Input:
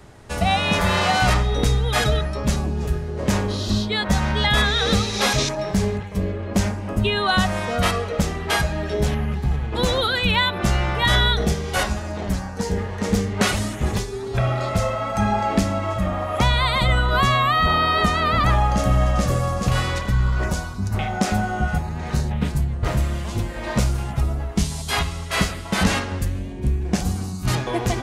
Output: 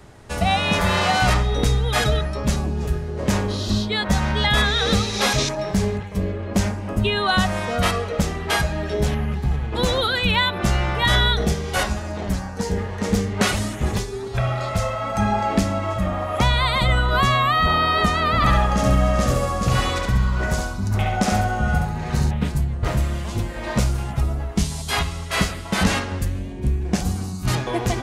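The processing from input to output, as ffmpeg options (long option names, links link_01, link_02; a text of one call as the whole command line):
ffmpeg -i in.wav -filter_complex "[0:a]asettb=1/sr,asplit=3[link_01][link_02][link_03];[link_01]atrim=end=14.284[link_04];[link_02]atrim=start=14.28:end=15.04,asetpts=PTS-STARTPTS,afade=type=in:duration=0.004:curve=qsin,afade=type=out:start_time=0.756:duration=0.004:curve=qsin,equalizer=frequency=300:width_type=o:width=1.4:gain=-6[link_05];[link_03]atrim=start=15.036[link_06];[link_04][link_05]acrossfade=duration=0.004:curve1=hsin:curve2=qsin[link_07];[link_07][link_06]acrossfade=duration=0.004:curve1=qsin:curve2=hsin,asettb=1/sr,asplit=3[link_08][link_09][link_10];[link_08]atrim=end=18.354[link_11];[link_09]atrim=start=18.35:end=22.31,asetpts=PTS-STARTPTS,afade=type=in:duration=0.004:curve=qsin,afade=type=out:start_time=3.956:duration=0.004:curve=qsin,aecho=1:1:69|138|207|276:0.668|0.187|0.0524|0.0147,atrim=end_sample=174636[link_12];[link_10]atrim=start=22.306[link_13];[link_11][link_12]acrossfade=duration=0.004:curve1=hsin:curve2=qsin[link_14];[link_14][link_13]acrossfade=duration=0.004:curve1=qsin:curve2=hsin" out.wav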